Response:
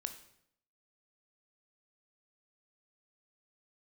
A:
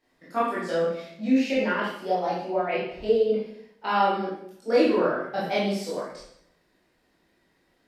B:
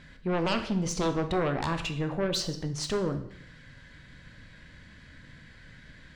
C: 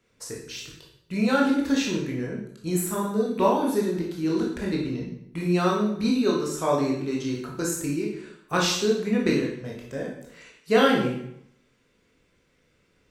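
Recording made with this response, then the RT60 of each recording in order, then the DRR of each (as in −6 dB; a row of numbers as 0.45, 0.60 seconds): B; 0.70, 0.70, 0.70 seconds; −8.5, 7.5, −2.5 decibels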